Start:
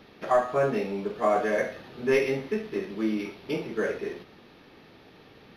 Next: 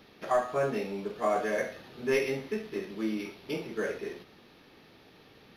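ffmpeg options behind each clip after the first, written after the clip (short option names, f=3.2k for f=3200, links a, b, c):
-af "highshelf=f=4.4k:g=7.5,volume=-4.5dB"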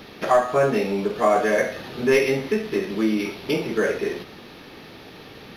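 -filter_complex "[0:a]asplit=2[a][b];[b]acompressor=threshold=-37dB:ratio=6,volume=2dB[c];[a][c]amix=inputs=2:normalize=0,asoftclip=type=hard:threshold=-15.5dB,volume=7dB"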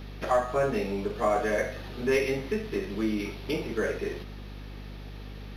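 -af "aeval=exprs='val(0)+0.0224*(sin(2*PI*50*n/s)+sin(2*PI*2*50*n/s)/2+sin(2*PI*3*50*n/s)/3+sin(2*PI*4*50*n/s)/4+sin(2*PI*5*50*n/s)/5)':c=same,volume=-7dB"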